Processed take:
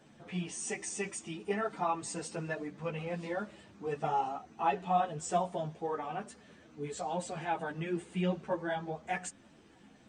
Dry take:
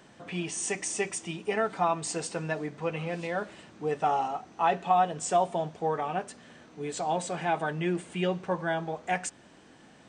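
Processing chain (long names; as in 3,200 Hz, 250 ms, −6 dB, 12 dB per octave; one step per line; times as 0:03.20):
spectral magnitudes quantised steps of 15 dB
low-shelf EQ 240 Hz +6 dB
string-ensemble chorus
level −3 dB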